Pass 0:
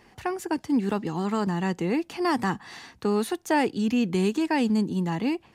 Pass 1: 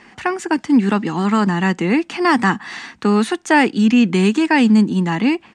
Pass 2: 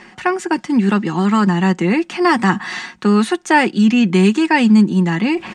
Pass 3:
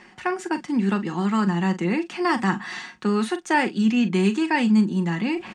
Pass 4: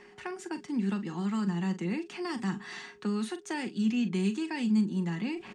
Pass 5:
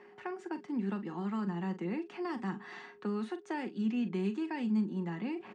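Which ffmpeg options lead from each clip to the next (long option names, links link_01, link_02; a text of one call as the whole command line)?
ffmpeg -i in.wav -af "firequalizer=gain_entry='entry(110,0);entry(210,12);entry(450,5);entry(1300,13);entry(2000,14);entry(4400,8);entry(8600,9);entry(12000,-12)':delay=0.05:min_phase=1" out.wav
ffmpeg -i in.wav -af "aecho=1:1:5.5:0.46,areverse,acompressor=mode=upward:threshold=-18dB:ratio=2.5,areverse" out.wav
ffmpeg -i in.wav -filter_complex "[0:a]asplit=2[link_01][link_02];[link_02]adelay=41,volume=-12dB[link_03];[link_01][link_03]amix=inputs=2:normalize=0,volume=-8dB" out.wav
ffmpeg -i in.wav -filter_complex "[0:a]acrossover=split=300|3000[link_01][link_02][link_03];[link_02]acompressor=threshold=-34dB:ratio=3[link_04];[link_01][link_04][link_03]amix=inputs=3:normalize=0,aeval=exprs='val(0)+0.00398*sin(2*PI*410*n/s)':channel_layout=same,volume=-7dB" out.wav
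ffmpeg -i in.wav -af "bandpass=frequency=620:width_type=q:width=0.54:csg=0" out.wav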